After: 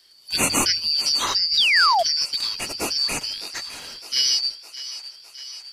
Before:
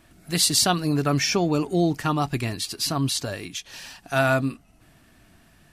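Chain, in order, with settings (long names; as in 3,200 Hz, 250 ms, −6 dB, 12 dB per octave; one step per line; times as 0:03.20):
band-splitting scrambler in four parts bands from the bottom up 4321
on a send: feedback echo with a high-pass in the loop 609 ms, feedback 68%, high-pass 460 Hz, level −14 dB
on the sum: sound drawn into the spectrogram fall, 0:01.57–0:02.03, 630–4,000 Hz −18 dBFS
mains-hum notches 50/100 Hz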